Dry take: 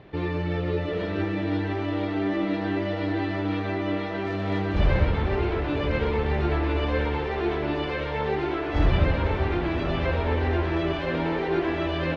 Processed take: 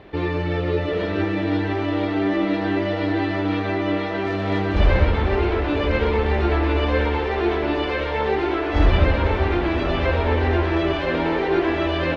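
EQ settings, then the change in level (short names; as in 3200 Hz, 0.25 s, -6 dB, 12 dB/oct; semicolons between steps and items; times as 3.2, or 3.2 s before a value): bell 140 Hz -12 dB 0.48 oct; +5.5 dB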